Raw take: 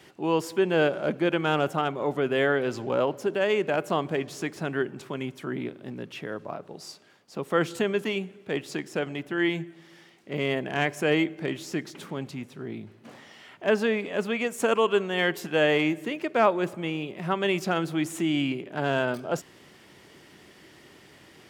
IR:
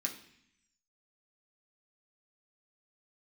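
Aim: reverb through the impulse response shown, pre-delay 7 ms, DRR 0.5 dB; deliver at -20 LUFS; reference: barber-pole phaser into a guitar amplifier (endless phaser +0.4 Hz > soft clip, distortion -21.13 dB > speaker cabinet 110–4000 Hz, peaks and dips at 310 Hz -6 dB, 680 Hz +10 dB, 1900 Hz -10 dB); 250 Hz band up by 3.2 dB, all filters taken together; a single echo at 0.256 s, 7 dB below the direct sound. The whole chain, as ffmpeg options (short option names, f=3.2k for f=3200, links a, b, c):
-filter_complex "[0:a]equalizer=f=250:t=o:g=8.5,aecho=1:1:256:0.447,asplit=2[a][b];[1:a]atrim=start_sample=2205,adelay=7[c];[b][c]afir=irnorm=-1:irlink=0,volume=-1.5dB[d];[a][d]amix=inputs=2:normalize=0,asplit=2[e][f];[f]afreqshift=0.4[g];[e][g]amix=inputs=2:normalize=1,asoftclip=threshold=-11.5dB,highpass=110,equalizer=f=310:t=q:w=4:g=-6,equalizer=f=680:t=q:w=4:g=10,equalizer=f=1.9k:t=q:w=4:g=-10,lowpass=f=4k:w=0.5412,lowpass=f=4k:w=1.3066,volume=4.5dB"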